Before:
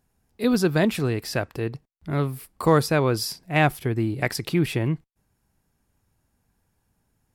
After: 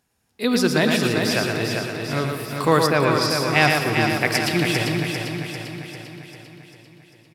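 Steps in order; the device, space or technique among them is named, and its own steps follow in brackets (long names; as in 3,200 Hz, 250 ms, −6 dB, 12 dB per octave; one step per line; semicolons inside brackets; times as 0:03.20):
PA in a hall (high-pass filter 140 Hz 6 dB per octave; parametric band 3,700 Hz +7 dB 2.7 octaves; single-tap delay 114 ms −5 dB; convolution reverb RT60 2.9 s, pre-delay 46 ms, DRR 8.5 dB)
0:02.86–0:03.29: low-pass filter 2,500 Hz → 5,500 Hz 12 dB per octave
repeating echo 396 ms, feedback 56%, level −5.5 dB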